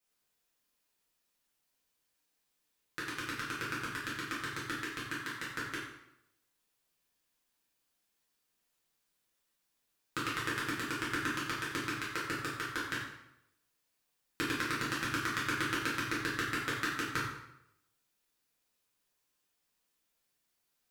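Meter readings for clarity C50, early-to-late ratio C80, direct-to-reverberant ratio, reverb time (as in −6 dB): 2.0 dB, 5.0 dB, −8.5 dB, 0.80 s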